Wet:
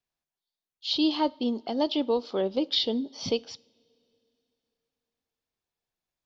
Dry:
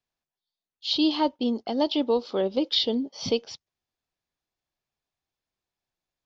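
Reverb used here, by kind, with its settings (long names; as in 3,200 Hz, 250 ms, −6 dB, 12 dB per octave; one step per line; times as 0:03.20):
coupled-rooms reverb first 0.5 s, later 3.1 s, from −18 dB, DRR 20 dB
level −2 dB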